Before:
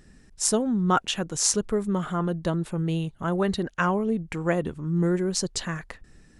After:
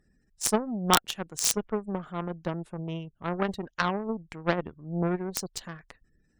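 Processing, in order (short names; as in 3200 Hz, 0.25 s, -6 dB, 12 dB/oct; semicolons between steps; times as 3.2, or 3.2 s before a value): spectral gate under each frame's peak -30 dB strong; added harmonics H 7 -18 dB, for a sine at -4 dBFS; wrapped overs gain 11.5 dB; gain +4.5 dB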